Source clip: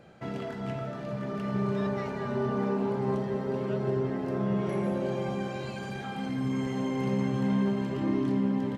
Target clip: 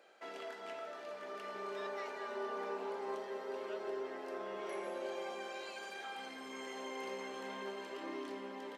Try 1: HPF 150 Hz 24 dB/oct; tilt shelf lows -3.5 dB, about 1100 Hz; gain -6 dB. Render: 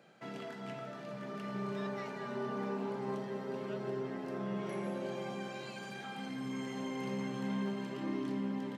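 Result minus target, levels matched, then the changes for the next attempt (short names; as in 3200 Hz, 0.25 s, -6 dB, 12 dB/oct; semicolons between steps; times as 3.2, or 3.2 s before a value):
125 Hz band +19.5 dB
change: HPF 370 Hz 24 dB/oct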